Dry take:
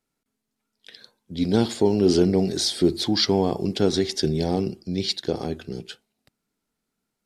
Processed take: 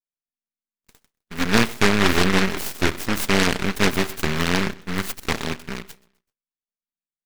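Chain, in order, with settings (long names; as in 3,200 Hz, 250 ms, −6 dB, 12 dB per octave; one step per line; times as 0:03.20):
noise gate −45 dBFS, range −24 dB
high-shelf EQ 3,500 Hz −8.5 dB
comb filter 4.5 ms, depth 35%
in parallel at −9 dB: bit reduction 6 bits
on the sum: half-wave rectification
on a send: repeating echo 128 ms, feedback 38%, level −23 dB
on the sum: short delay modulated by noise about 1,600 Hz, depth 0.35 ms
level +1 dB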